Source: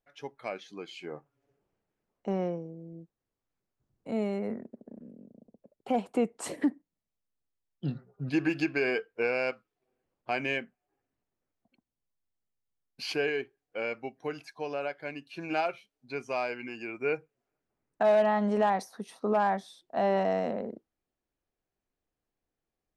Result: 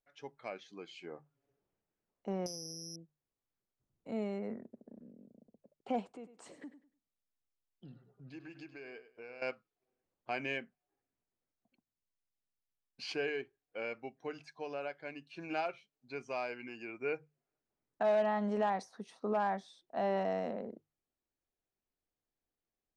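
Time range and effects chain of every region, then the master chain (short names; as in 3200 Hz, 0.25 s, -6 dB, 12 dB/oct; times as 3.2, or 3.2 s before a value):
2.46–2.96 compressor, threshold -38 dBFS + careless resampling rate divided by 8×, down none, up zero stuff
6.1–9.42 compressor 2:1, threshold -52 dBFS + feedback echo 0.1 s, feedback 24%, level -13.5 dB
whole clip: LPF 8100 Hz 24 dB/oct; notches 50/100/150 Hz; gain -6.5 dB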